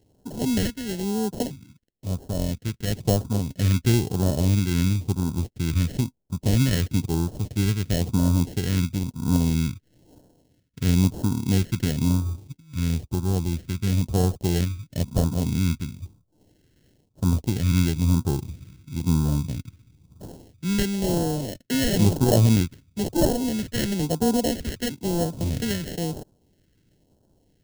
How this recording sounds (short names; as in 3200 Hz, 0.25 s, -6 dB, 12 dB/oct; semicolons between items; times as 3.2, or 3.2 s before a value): aliases and images of a low sample rate 1200 Hz, jitter 0%; phasing stages 2, 1 Hz, lowest notch 770–2000 Hz